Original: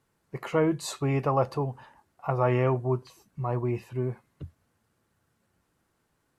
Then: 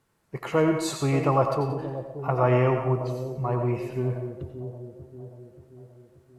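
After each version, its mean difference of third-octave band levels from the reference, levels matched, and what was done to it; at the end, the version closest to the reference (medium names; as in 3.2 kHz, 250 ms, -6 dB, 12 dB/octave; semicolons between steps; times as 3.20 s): 5.5 dB: on a send: two-band feedback delay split 650 Hz, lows 581 ms, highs 90 ms, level -10 dB; on the sum: algorithmic reverb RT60 0.46 s, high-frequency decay 0.55×, pre-delay 60 ms, DRR 6 dB; trim +2 dB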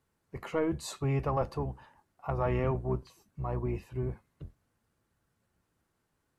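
1.5 dB: octave divider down 1 oct, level -3 dB; in parallel at -8.5 dB: saturation -19.5 dBFS, distortion -14 dB; on the sum: trim -8 dB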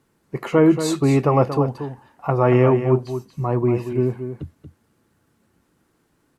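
4.0 dB: FFT filter 110 Hz 0 dB, 290 Hz +7 dB, 600 Hz 0 dB; on a send: delay 232 ms -9.5 dB; on the sum: trim +6 dB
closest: second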